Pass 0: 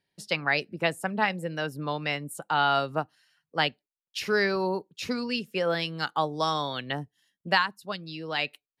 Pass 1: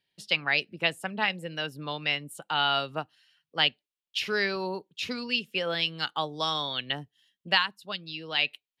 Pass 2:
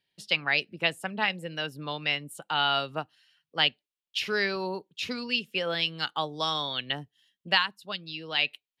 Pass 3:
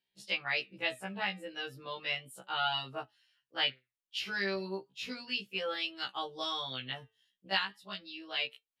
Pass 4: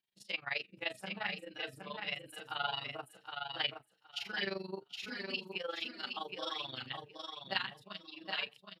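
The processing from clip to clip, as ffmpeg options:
ffmpeg -i in.wav -af "equalizer=frequency=3100:width=1.3:gain=11.5,volume=-5dB" out.wav
ffmpeg -i in.wav -af anull out.wav
ffmpeg -i in.wav -af "flanger=delay=4.4:depth=4.6:regen=82:speed=0.35:shape=sinusoidal,afftfilt=real='re*1.73*eq(mod(b,3),0)':imag='im*1.73*eq(mod(b,3),0)':win_size=2048:overlap=0.75" out.wav
ffmpeg -i in.wav -filter_complex "[0:a]tremolo=f=23:d=0.857,asplit=2[link_01][link_02];[link_02]aecho=0:1:768|1536|2304:0.531|0.0849|0.0136[link_03];[link_01][link_03]amix=inputs=2:normalize=0,volume=-1dB" out.wav

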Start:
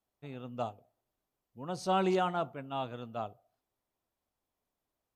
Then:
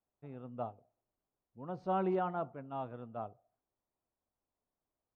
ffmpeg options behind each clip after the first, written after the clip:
ffmpeg -i in.wav -af "lowpass=1400,volume=-3.5dB" out.wav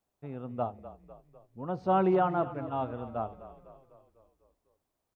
ffmpeg -i in.wav -filter_complex "[0:a]asplit=7[link_01][link_02][link_03][link_04][link_05][link_06][link_07];[link_02]adelay=250,afreqshift=-32,volume=-14.5dB[link_08];[link_03]adelay=500,afreqshift=-64,volume=-19.5dB[link_09];[link_04]adelay=750,afreqshift=-96,volume=-24.6dB[link_10];[link_05]adelay=1000,afreqshift=-128,volume=-29.6dB[link_11];[link_06]adelay=1250,afreqshift=-160,volume=-34.6dB[link_12];[link_07]adelay=1500,afreqshift=-192,volume=-39.7dB[link_13];[link_01][link_08][link_09][link_10][link_11][link_12][link_13]amix=inputs=7:normalize=0,volume=7.5dB" out.wav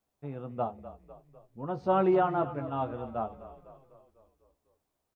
ffmpeg -i in.wav -filter_complex "[0:a]asplit=2[link_01][link_02];[link_02]adelay=14,volume=-7dB[link_03];[link_01][link_03]amix=inputs=2:normalize=0" out.wav

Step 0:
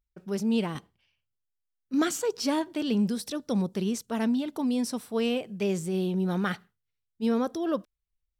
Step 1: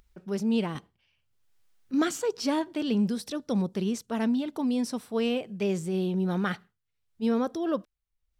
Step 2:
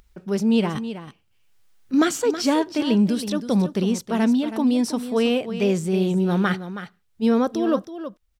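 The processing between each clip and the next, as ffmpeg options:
ffmpeg -i in.wav -af "highshelf=frequency=7400:gain=-6.5,acompressor=mode=upward:threshold=-48dB:ratio=2.5" out.wav
ffmpeg -i in.wav -af "aecho=1:1:322:0.266,volume=7dB" out.wav

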